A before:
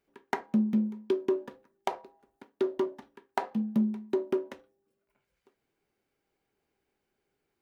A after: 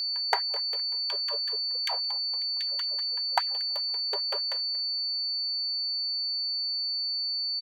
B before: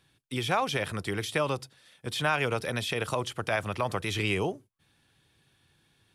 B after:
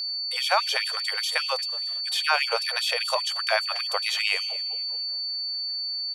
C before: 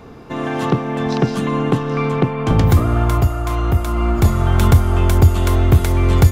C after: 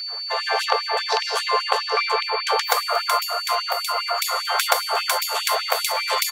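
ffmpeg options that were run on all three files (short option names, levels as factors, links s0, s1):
-filter_complex "[0:a]asplit=4[s0][s1][s2][s3];[s1]adelay=231,afreqshift=57,volume=0.112[s4];[s2]adelay=462,afreqshift=114,volume=0.038[s5];[s3]adelay=693,afreqshift=171,volume=0.013[s6];[s0][s4][s5][s6]amix=inputs=4:normalize=0,aeval=exprs='val(0)+0.0224*sin(2*PI*4500*n/s)':c=same,afftfilt=real='re*gte(b*sr/1024,420*pow(2300/420,0.5+0.5*sin(2*PI*5*pts/sr)))':imag='im*gte(b*sr/1024,420*pow(2300/420,0.5+0.5*sin(2*PI*5*pts/sr)))':win_size=1024:overlap=0.75,volume=1.88"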